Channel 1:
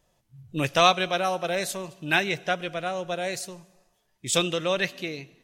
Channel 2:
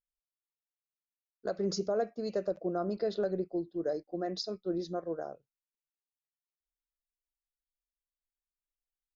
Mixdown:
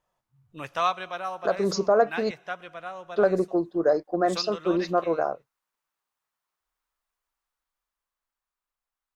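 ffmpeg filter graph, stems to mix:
ffmpeg -i stem1.wav -i stem2.wav -filter_complex "[0:a]volume=-15.5dB[link_01];[1:a]dynaudnorm=framelen=250:gausssize=13:maxgain=6dB,volume=1dB,asplit=3[link_02][link_03][link_04];[link_02]atrim=end=2.31,asetpts=PTS-STARTPTS,afade=type=out:start_time=2.306:duration=0.004:curve=hsin[link_05];[link_03]atrim=start=2.31:end=3.16,asetpts=PTS-STARTPTS,volume=0[link_06];[link_04]atrim=start=3.16,asetpts=PTS-STARTPTS,afade=type=in:duration=0.004:curve=hsin[link_07];[link_05][link_06][link_07]concat=n=3:v=0:a=1,asplit=2[link_08][link_09];[link_09]apad=whole_len=239664[link_10];[link_01][link_10]sidechaincompress=threshold=-23dB:ratio=8:attack=16:release=1120[link_11];[link_11][link_08]amix=inputs=2:normalize=0,asoftclip=type=tanh:threshold=-10.5dB,equalizer=frequency=1100:width_type=o:width=1.5:gain=14" out.wav

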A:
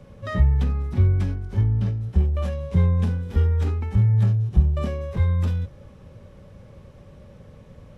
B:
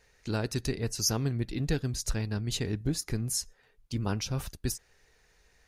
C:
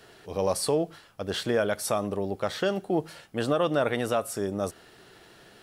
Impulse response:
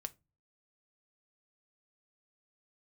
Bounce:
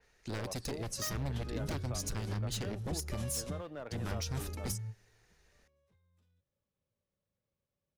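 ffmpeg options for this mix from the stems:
-filter_complex "[0:a]lowshelf=frequency=100:gain=-8.5,acompressor=threshold=-29dB:ratio=12,highshelf=frequency=2800:gain=12,adelay=750,volume=-9dB[link_01];[1:a]aeval=exprs='0.0473*(abs(mod(val(0)/0.0473+3,4)-2)-1)':channel_layout=same,volume=-5dB,asplit=2[link_02][link_03];[2:a]aeval=exprs='sgn(val(0))*max(abs(val(0))-0.00168,0)':channel_layout=same,lowpass=2800,aeval=exprs='clip(val(0),-1,0.0944)':channel_layout=same,volume=-18.5dB[link_04];[link_03]apad=whole_len=384942[link_05];[link_01][link_05]sidechaingate=range=-32dB:threshold=-59dB:ratio=16:detection=peak[link_06];[link_06][link_02][link_04]amix=inputs=3:normalize=0,acrossover=split=240[link_07][link_08];[link_08]acompressor=threshold=-38dB:ratio=2[link_09];[link_07][link_09]amix=inputs=2:normalize=0,adynamicequalizer=threshold=0.00282:dfrequency=4900:dqfactor=0.7:tfrequency=4900:tqfactor=0.7:attack=5:release=100:ratio=0.375:range=2:mode=boostabove:tftype=highshelf"

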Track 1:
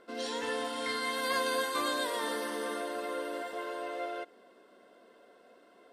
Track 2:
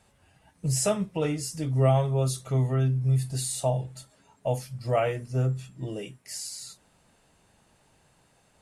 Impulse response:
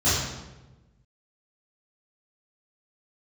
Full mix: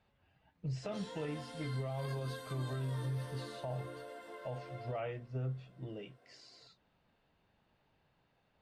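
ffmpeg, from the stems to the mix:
-filter_complex "[0:a]flanger=delay=15.5:depth=3.7:speed=1.2,acrossover=split=370[link_01][link_02];[link_02]acompressor=threshold=-44dB:ratio=2[link_03];[link_01][link_03]amix=inputs=2:normalize=0,adelay=750,volume=-6dB[link_04];[1:a]lowpass=frequency=4100:width=0.5412,lowpass=frequency=4100:width=1.3066,volume=-10.5dB[link_05];[link_04][link_05]amix=inputs=2:normalize=0,alimiter=level_in=7dB:limit=-24dB:level=0:latency=1:release=40,volume=-7dB"

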